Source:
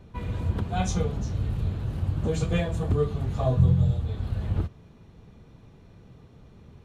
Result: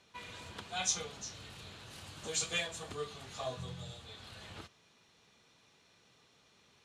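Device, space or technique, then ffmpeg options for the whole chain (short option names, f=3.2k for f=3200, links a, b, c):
piezo pickup straight into a mixer: -filter_complex "[0:a]lowpass=6.4k,aderivative,asettb=1/sr,asplit=3[a][b][c];[a]atrim=end=1.914[d];[b]atrim=start=1.91:end=2.67,asetpts=PTS-STARTPTS,afade=t=in:d=0.004:c=qsin,afade=t=out:st=0.756:d=0.004:c=qsin,highshelf=f=4.8k:g=5.5[e];[c]atrim=start=2.666[f];[d][e]acrossfade=d=0.004:c1=hsin:c2=qsin[g];[g][f]acrossfade=d=0.004:c1=qsin:c2=hsin,volume=9.5dB"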